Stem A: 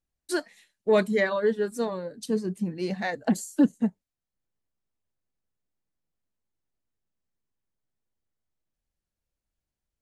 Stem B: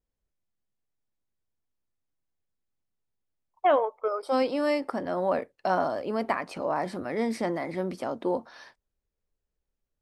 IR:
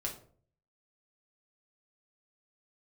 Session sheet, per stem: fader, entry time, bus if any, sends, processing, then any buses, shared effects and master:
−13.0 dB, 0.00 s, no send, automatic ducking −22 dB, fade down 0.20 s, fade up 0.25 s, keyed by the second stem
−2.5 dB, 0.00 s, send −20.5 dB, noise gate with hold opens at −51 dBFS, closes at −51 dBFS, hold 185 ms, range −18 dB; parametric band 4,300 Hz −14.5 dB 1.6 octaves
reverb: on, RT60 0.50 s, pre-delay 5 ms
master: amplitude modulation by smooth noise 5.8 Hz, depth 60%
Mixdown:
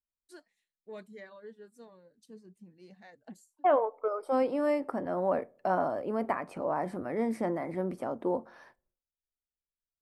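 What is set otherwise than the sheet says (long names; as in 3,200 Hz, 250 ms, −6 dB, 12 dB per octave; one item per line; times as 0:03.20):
stem A −13.0 dB → −24.0 dB
master: missing amplitude modulation by smooth noise 5.8 Hz, depth 60%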